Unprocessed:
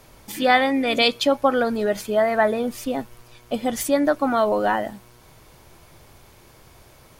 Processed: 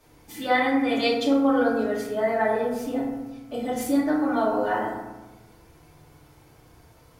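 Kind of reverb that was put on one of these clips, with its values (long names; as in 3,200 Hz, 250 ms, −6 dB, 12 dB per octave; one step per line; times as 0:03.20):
feedback delay network reverb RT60 1.1 s, low-frequency decay 1.4×, high-frequency decay 0.4×, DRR −7.5 dB
level −13 dB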